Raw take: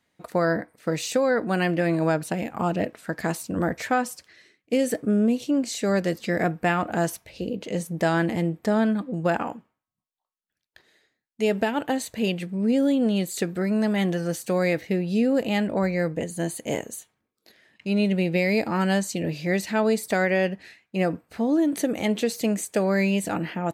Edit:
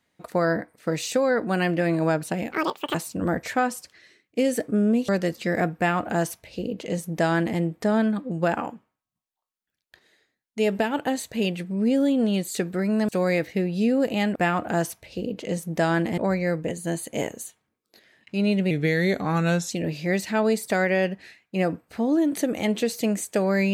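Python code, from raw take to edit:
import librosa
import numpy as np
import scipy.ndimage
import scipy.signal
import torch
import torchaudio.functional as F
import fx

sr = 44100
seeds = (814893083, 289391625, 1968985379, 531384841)

y = fx.edit(x, sr, fx.speed_span(start_s=2.52, length_s=0.77, speed=1.81),
    fx.cut(start_s=5.43, length_s=0.48),
    fx.duplicate(start_s=6.59, length_s=1.82, to_s=15.7),
    fx.cut(start_s=13.91, length_s=0.52),
    fx.speed_span(start_s=18.23, length_s=0.88, speed=0.88), tone=tone)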